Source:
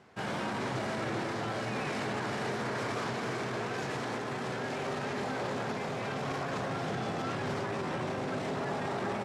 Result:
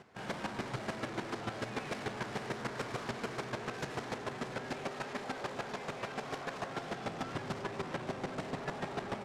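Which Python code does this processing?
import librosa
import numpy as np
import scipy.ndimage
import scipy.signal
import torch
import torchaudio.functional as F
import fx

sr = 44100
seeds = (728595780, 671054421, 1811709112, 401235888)

y = fx.low_shelf(x, sr, hz=180.0, db=-10.0, at=(4.88, 7.04))
y = 10.0 ** (-35.0 / 20.0) * np.tanh(y / 10.0 ** (-35.0 / 20.0))
y = fx.chopper(y, sr, hz=6.8, depth_pct=65, duty_pct=15)
y = F.gain(torch.from_numpy(y), 5.0).numpy()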